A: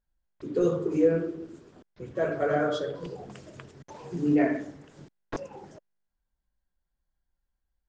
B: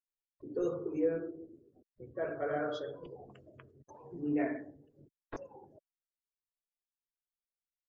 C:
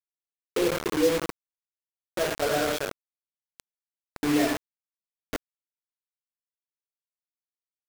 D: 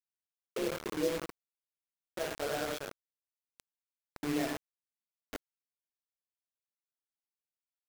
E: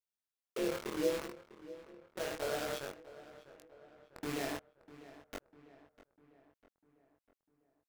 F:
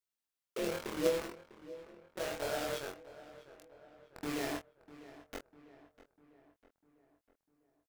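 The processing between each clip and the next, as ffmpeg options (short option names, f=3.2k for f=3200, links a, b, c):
-af "afftdn=nr=28:nf=-48,equalizer=f=180:t=o:w=0.42:g=-10,volume=-8.5dB"
-af "acrusher=bits=5:mix=0:aa=0.000001,volume=8dB"
-af "tremolo=f=140:d=0.571,volume=-7dB"
-filter_complex "[0:a]flanger=delay=20:depth=2.8:speed=0.61,asplit=2[a][b];[b]adelay=649,lowpass=f=2.6k:p=1,volume=-16dB,asplit=2[c][d];[d]adelay=649,lowpass=f=2.6k:p=1,volume=0.54,asplit=2[e][f];[f]adelay=649,lowpass=f=2.6k:p=1,volume=0.54,asplit=2[g][h];[h]adelay=649,lowpass=f=2.6k:p=1,volume=0.54,asplit=2[i][j];[j]adelay=649,lowpass=f=2.6k:p=1,volume=0.54[k];[a][c][e][g][i][k]amix=inputs=6:normalize=0,volume=1dB"
-filter_complex "[0:a]asplit=2[a][b];[b]acrusher=bits=3:mix=0:aa=0.000001,volume=-10dB[c];[a][c]amix=inputs=2:normalize=0,asplit=2[d][e];[e]adelay=24,volume=-6.5dB[f];[d][f]amix=inputs=2:normalize=0"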